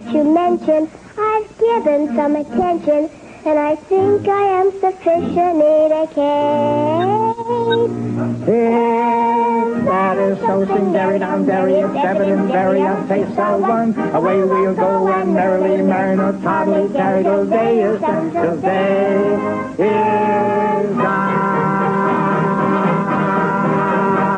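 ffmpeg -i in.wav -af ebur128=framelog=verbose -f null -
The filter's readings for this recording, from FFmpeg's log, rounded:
Integrated loudness:
  I:         -15.9 LUFS
  Threshold: -25.9 LUFS
Loudness range:
  LRA:         1.1 LU
  Threshold: -35.9 LUFS
  LRA low:   -16.3 LUFS
  LRA high:  -15.2 LUFS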